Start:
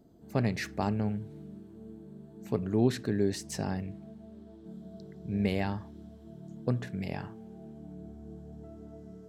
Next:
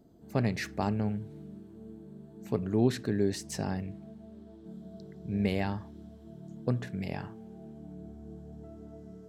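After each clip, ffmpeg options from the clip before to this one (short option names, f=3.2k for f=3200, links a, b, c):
-af anull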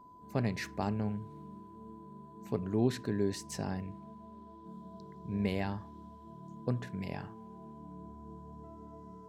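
-af "aeval=exprs='val(0)+0.00316*sin(2*PI*1000*n/s)':c=same,volume=-3.5dB"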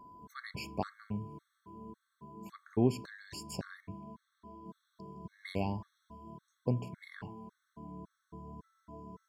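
-af "afftfilt=real='re*gt(sin(2*PI*1.8*pts/sr)*(1-2*mod(floor(b*sr/1024/1100),2)),0)':imag='im*gt(sin(2*PI*1.8*pts/sr)*(1-2*mod(floor(b*sr/1024/1100),2)),0)':win_size=1024:overlap=0.75,volume=1.5dB"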